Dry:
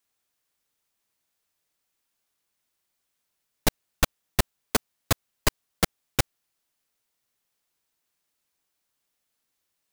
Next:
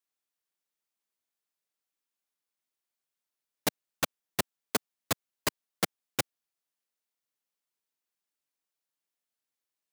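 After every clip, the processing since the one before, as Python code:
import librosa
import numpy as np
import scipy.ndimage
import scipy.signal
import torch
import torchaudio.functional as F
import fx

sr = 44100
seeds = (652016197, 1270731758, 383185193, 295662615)

y = scipy.signal.sosfilt(scipy.signal.butter(2, 170.0, 'highpass', fs=sr, output='sos'), x)
y = fx.upward_expand(y, sr, threshold_db=-33.0, expansion=1.5)
y = y * librosa.db_to_amplitude(-4.5)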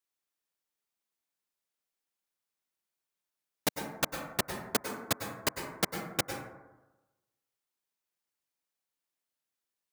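y = fx.rev_plate(x, sr, seeds[0], rt60_s=1.1, hf_ratio=0.3, predelay_ms=90, drr_db=4.5)
y = y * librosa.db_to_amplitude(-1.0)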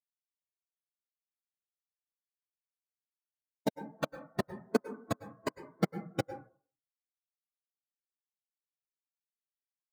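y = fx.spectral_expand(x, sr, expansion=2.5)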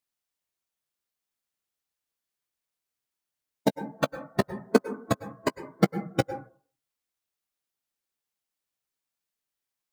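y = fx.doubler(x, sr, ms=15.0, db=-14.0)
y = y * librosa.db_to_amplitude(8.0)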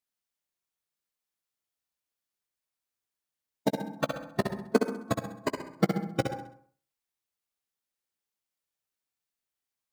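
y = fx.echo_feedback(x, sr, ms=66, feedback_pct=40, wet_db=-6)
y = y * librosa.db_to_amplitude(-3.5)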